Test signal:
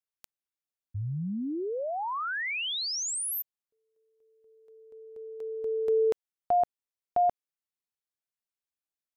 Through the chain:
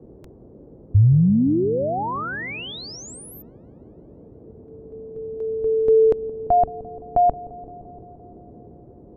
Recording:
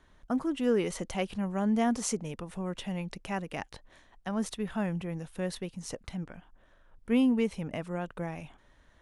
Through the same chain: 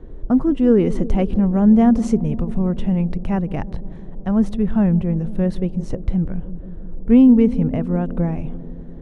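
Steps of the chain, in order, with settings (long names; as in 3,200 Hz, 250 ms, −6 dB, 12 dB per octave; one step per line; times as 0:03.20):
spectral tilt −4.5 dB per octave
noise in a band 38–460 Hz −51 dBFS
delay with a low-pass on its return 172 ms, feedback 74%, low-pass 520 Hz, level −15 dB
level +5.5 dB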